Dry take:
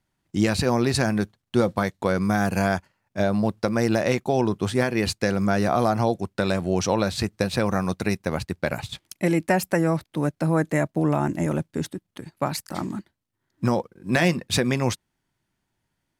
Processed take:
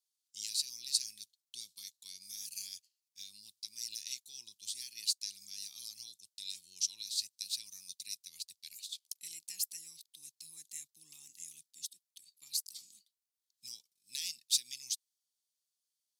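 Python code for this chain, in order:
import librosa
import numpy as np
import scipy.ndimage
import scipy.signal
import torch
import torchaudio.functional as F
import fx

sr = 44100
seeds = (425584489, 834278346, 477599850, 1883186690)

y = scipy.signal.sosfilt(scipy.signal.cheby2(4, 50, 1600.0, 'highpass', fs=sr, output='sos'), x)
y = y * 10.0 ** (-1.5 / 20.0)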